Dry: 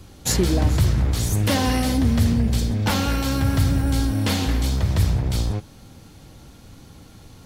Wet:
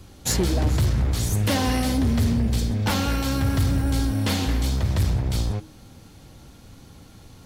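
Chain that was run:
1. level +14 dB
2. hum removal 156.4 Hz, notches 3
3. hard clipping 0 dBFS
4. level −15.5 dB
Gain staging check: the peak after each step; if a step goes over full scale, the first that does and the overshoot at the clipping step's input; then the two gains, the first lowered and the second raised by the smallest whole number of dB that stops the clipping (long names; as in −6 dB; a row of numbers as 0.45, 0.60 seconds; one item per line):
+6.0, +6.5, 0.0, −15.5 dBFS
step 1, 6.5 dB
step 1 +7 dB, step 4 −8.5 dB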